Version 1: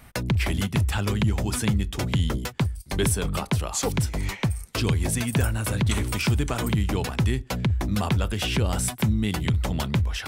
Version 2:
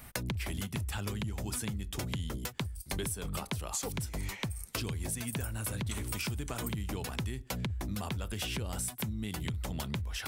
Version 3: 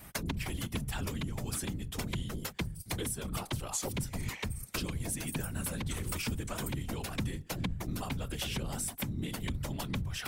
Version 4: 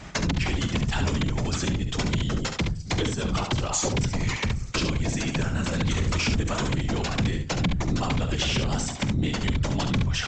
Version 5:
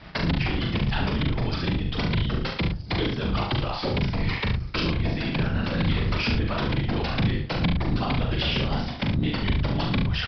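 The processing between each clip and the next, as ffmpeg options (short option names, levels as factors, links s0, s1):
-af "highshelf=f=7700:g=10,acompressor=threshold=0.0316:ratio=10,volume=0.75"
-af "afftfilt=real='hypot(re,im)*cos(2*PI*random(0))':imag='hypot(re,im)*sin(2*PI*random(1))':win_size=512:overlap=0.75,volume=2"
-af "aresample=16000,aeval=exprs='0.0944*sin(PI/2*2*val(0)/0.0944)':c=same,aresample=44100,aecho=1:1:47|71:0.141|0.473,volume=1.19"
-filter_complex "[0:a]aresample=11025,aeval=exprs='sgn(val(0))*max(abs(val(0))-0.00422,0)':c=same,aresample=44100,asplit=2[s0][s1];[s1]adelay=41,volume=0.631[s2];[s0][s2]amix=inputs=2:normalize=0"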